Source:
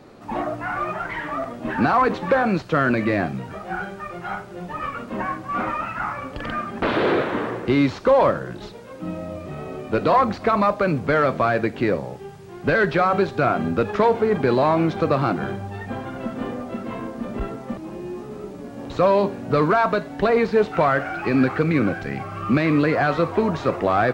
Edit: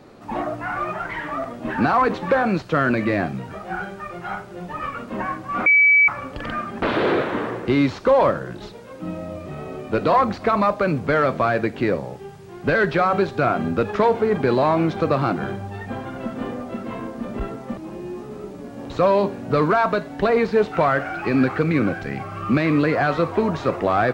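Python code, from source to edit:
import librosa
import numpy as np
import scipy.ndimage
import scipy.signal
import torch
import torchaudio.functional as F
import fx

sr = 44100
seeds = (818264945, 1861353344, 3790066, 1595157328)

y = fx.edit(x, sr, fx.bleep(start_s=5.66, length_s=0.42, hz=2290.0, db=-10.5), tone=tone)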